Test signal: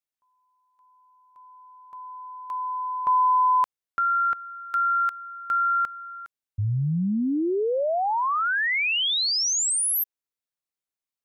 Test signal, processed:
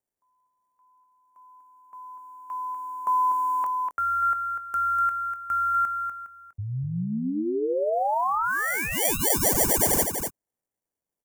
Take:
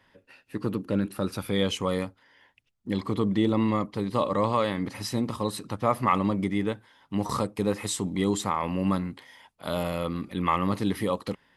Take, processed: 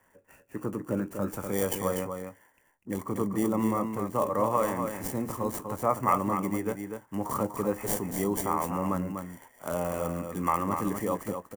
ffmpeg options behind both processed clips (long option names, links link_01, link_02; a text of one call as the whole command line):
ffmpeg -i in.wav -filter_complex "[0:a]asplit=2[link_01][link_02];[link_02]adelay=23,volume=-14dB[link_03];[link_01][link_03]amix=inputs=2:normalize=0,acrossover=split=290|2700[link_04][link_05][link_06];[link_06]acrusher=samples=34:mix=1:aa=0.000001[link_07];[link_04][link_05][link_07]amix=inputs=3:normalize=0,aexciter=amount=8.9:drive=7.1:freq=5800,equalizer=frequency=830:width_type=o:width=2.8:gain=5.5,aecho=1:1:245:0.473,volume=-6.5dB" out.wav